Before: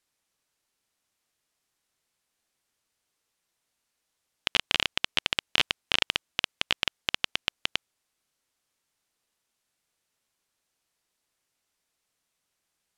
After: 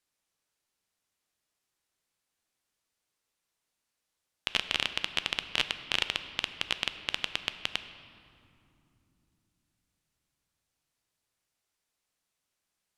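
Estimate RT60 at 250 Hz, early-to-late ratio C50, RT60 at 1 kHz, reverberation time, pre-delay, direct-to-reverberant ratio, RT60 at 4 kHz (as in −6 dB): 4.5 s, 11.0 dB, 2.6 s, 2.8 s, 10 ms, 10.0 dB, 1.6 s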